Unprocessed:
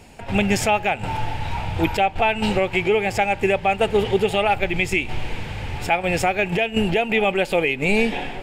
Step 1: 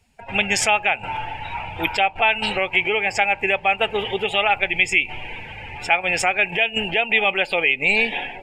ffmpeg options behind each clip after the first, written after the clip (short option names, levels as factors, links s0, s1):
-af "afftdn=nr=21:nf=-35,tiltshelf=f=630:g=-9,volume=0.75"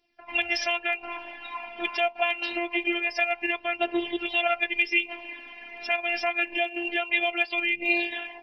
-af "afftfilt=real='re*between(b*sr/4096,110,5900)':imag='im*between(b*sr/4096,110,5900)':win_size=4096:overlap=0.75,afftfilt=real='hypot(re,im)*cos(PI*b)':imag='0':win_size=512:overlap=0.75,aphaser=in_gain=1:out_gain=1:delay=4.8:decay=0.44:speed=0.25:type=triangular,volume=0.668"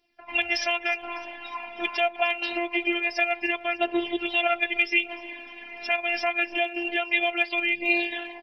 -af "aecho=1:1:302|604|906|1208:0.106|0.054|0.0276|0.0141,volume=1.12"